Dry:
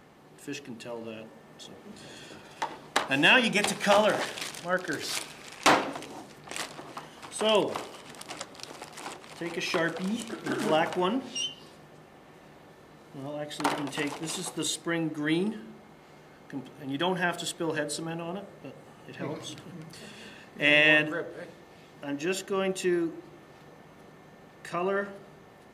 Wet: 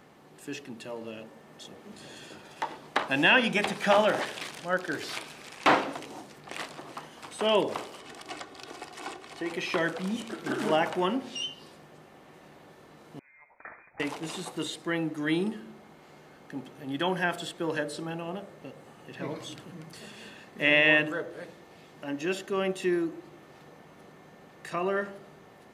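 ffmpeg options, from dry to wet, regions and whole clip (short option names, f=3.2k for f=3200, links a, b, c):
-filter_complex "[0:a]asettb=1/sr,asplit=3[a][b][c];[a]atrim=end=8.004[d];[b]atrim=start=8:end=9.5,asetpts=PTS-STARTPTS,afade=t=in:d=0.004:c=qsin,afade=t=out:st=1.496:d=0.004:c=qsin,highshelf=f=12k:g=-10.5,aecho=1:1:2.7:0.49,atrim=end_sample=66150[e];[c]atrim=start=9.496[f];[d][e]acrossfade=d=0.004:c1=hsin:c2=qsin[g];[g][f]acrossfade=d=0.004:c1=qsin:c2=hsin,asettb=1/sr,asplit=3[h][i][j];[h]atrim=end=13.194[k];[i]atrim=start=13.19:end=14,asetpts=PTS-STARTPTS,afade=t=in:d=0.004:c=qsin,afade=t=out:st=0.806:d=0.004:c=qsin,aderivative,lowpass=f=2.3k:t=q:w=0.5098,lowpass=f=2.3k:t=q:w=0.6013,lowpass=f=2.3k:t=q:w=0.9,lowpass=f=2.3k:t=q:w=2.563,afreqshift=-2700[l];[j]atrim=start=13.996[m];[k][l]acrossfade=d=0.004:c1=hsin:c2=qsin[n];[n][m]acrossfade=d=0.004:c1=qsin:c2=hsin,acrossover=split=3600[o][p];[p]acompressor=threshold=-42dB:ratio=4:attack=1:release=60[q];[o][q]amix=inputs=2:normalize=0,lowshelf=f=69:g=-7"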